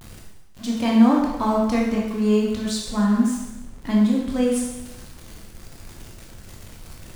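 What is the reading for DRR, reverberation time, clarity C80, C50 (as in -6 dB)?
-2.5 dB, 1.0 s, 4.0 dB, 1.5 dB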